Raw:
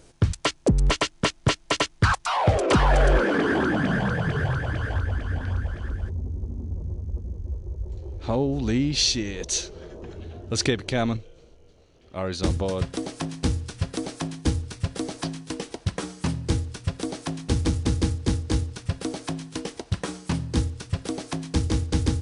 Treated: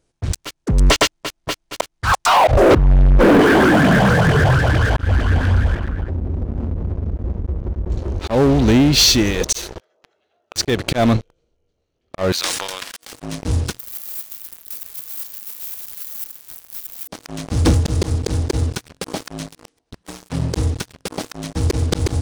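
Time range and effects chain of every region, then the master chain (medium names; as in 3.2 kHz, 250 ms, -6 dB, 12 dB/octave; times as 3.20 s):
2.51–3.41 s: tilt EQ -4 dB/octave + compression 12:1, threshold -3 dBFS + transformer saturation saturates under 130 Hz
5.75–7.90 s: low-pass 2.5 kHz + compression 12:1, threshold -30 dBFS
9.80–10.56 s: high-pass 730 Hz + treble shelf 5 kHz -7 dB + comb 1.5 ms, depth 31%
12.32–13.13 s: high-pass 1.4 kHz + decay stretcher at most 29 dB/s
13.79–17.08 s: jump at every zero crossing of -32 dBFS + inverse Chebyshev band-stop 110–5500 Hz, stop band 60 dB + tilt EQ +2.5 dB/octave
whole clip: dynamic bell 640 Hz, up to +4 dB, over -35 dBFS, Q 1.4; slow attack 160 ms; waveshaping leveller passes 5; trim -5.5 dB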